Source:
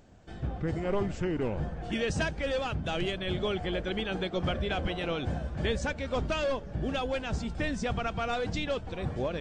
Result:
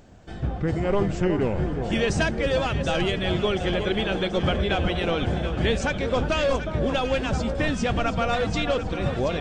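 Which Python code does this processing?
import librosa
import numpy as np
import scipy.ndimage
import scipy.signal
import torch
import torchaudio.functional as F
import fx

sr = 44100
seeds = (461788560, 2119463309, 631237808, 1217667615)

y = fx.echo_alternate(x, sr, ms=365, hz=1300.0, feedback_pct=73, wet_db=-7)
y = y * librosa.db_to_amplitude(6.5)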